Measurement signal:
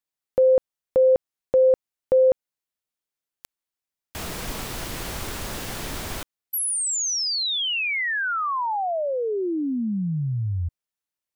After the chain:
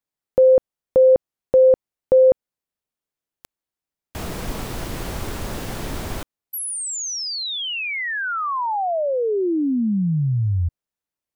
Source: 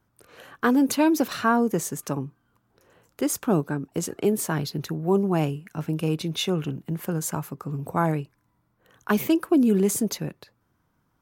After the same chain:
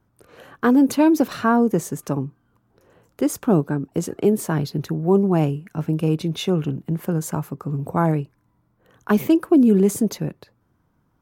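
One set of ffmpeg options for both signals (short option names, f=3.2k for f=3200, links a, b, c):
-af "tiltshelf=f=1.1k:g=4,volume=1.5dB"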